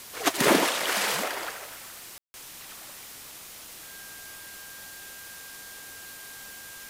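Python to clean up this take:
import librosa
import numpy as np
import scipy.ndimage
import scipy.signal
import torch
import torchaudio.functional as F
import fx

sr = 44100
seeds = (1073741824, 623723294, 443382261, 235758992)

y = fx.notch(x, sr, hz=1600.0, q=30.0)
y = fx.fix_ambience(y, sr, seeds[0], print_start_s=3.22, print_end_s=3.72, start_s=2.18, end_s=2.34)
y = fx.noise_reduce(y, sr, print_start_s=3.22, print_end_s=3.72, reduce_db=30.0)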